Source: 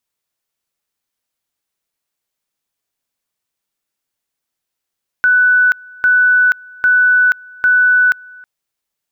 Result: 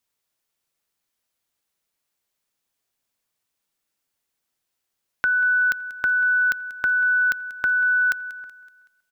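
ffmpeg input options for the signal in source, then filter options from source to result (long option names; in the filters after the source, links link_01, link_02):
-f lavfi -i "aevalsrc='pow(10,(-7.5-26.5*gte(mod(t,0.8),0.48))/20)*sin(2*PI*1490*t)':duration=3.2:sample_rate=44100"
-filter_complex "[0:a]acrossover=split=460|3000[link_01][link_02][link_03];[link_02]acompressor=threshold=-30dB:ratio=2[link_04];[link_01][link_04][link_03]amix=inputs=3:normalize=0,aecho=1:1:188|376|564|752:0.133|0.064|0.0307|0.0147"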